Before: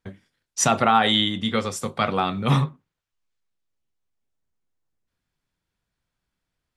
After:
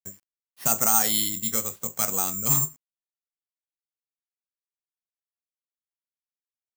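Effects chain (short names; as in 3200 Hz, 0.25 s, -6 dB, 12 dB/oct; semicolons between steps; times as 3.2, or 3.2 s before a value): bit-crush 9-bit; careless resampling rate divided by 6×, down filtered, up zero stuff; gain -10.5 dB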